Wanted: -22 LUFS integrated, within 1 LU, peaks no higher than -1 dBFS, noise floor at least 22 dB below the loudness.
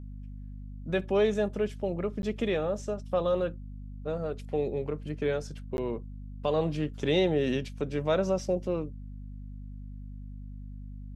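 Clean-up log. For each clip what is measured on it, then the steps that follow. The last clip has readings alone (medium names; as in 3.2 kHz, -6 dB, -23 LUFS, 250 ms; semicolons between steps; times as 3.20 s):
dropouts 2; longest dropout 11 ms; hum 50 Hz; highest harmonic 250 Hz; hum level -39 dBFS; loudness -30.5 LUFS; peak level -14.5 dBFS; loudness target -22.0 LUFS
-> interpolate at 2.22/5.77 s, 11 ms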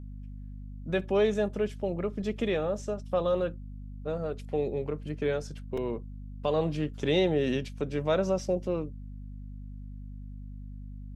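dropouts 0; hum 50 Hz; highest harmonic 250 Hz; hum level -39 dBFS
-> de-hum 50 Hz, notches 5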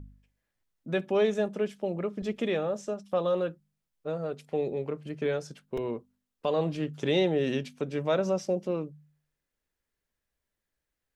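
hum not found; loudness -30.5 LUFS; peak level -14.5 dBFS; loudness target -22.0 LUFS
-> trim +8.5 dB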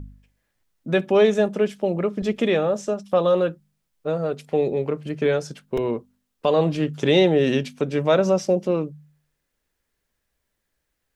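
loudness -22.0 LUFS; peak level -6.0 dBFS; noise floor -77 dBFS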